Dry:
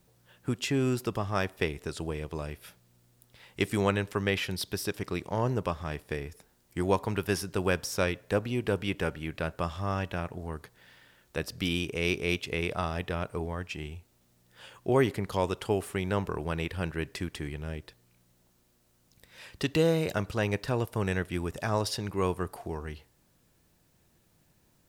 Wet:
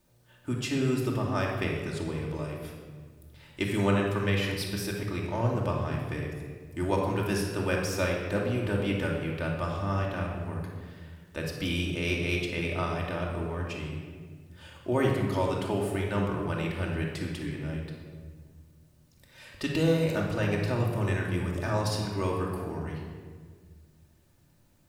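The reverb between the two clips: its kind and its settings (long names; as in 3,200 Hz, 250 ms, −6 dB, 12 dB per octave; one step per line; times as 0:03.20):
rectangular room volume 1,900 cubic metres, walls mixed, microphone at 2.6 metres
level −4 dB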